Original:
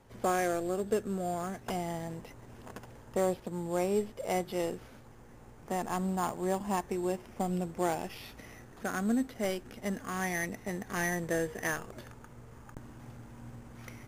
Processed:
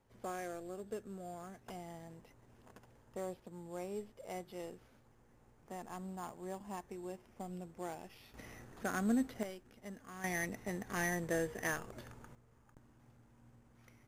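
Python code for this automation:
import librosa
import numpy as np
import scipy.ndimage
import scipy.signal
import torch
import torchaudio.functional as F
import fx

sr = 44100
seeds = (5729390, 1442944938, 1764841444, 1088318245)

y = fx.gain(x, sr, db=fx.steps((0.0, -13.0), (8.34, -3.0), (9.43, -14.0), (10.24, -4.0), (12.35, -16.0)))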